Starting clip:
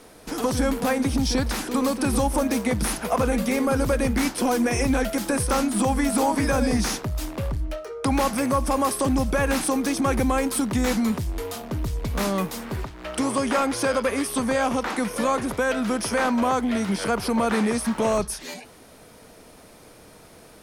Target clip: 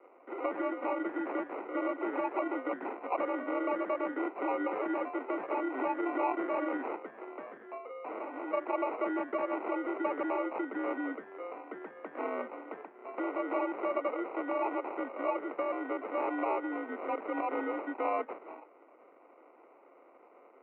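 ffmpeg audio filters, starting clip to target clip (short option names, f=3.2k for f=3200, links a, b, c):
-filter_complex "[0:a]acrusher=samples=27:mix=1:aa=0.000001,asettb=1/sr,asplit=3[a][b][c];[a]atrim=end=6.964[d];[b]atrim=start=6.96:end=8.53,asetpts=PTS-STARTPTS,afade=t=in:d=0.004:c=qsin,afade=t=out:st=1.566:d=0.004:c=qsin,aeval=exprs='0.0668*(abs(mod(val(0)/0.0668+3,4)-2)-1)':c=same[e];[c]atrim=start=8.526[f];[d][e]acrossfade=d=0.004:c1=hsin:c2=qsin[g];[g][f]acrossfade=d=0.004:c1=qsin:c2=hsin,highpass=f=260:t=q:w=0.5412,highpass=f=260:t=q:w=1.307,lowpass=f=2.1k:t=q:w=0.5176,lowpass=f=2.1k:t=q:w=0.7071,lowpass=f=2.1k:t=q:w=1.932,afreqshift=59,volume=-8.5dB"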